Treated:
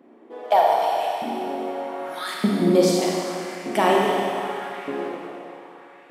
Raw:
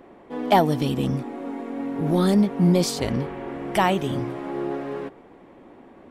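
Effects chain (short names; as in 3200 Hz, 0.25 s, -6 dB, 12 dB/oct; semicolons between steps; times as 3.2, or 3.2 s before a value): LFO high-pass saw up 0.82 Hz 210–2600 Hz; Schroeder reverb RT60 2.5 s, combs from 27 ms, DRR -2 dB; vocal rider within 5 dB 2 s; gain -4.5 dB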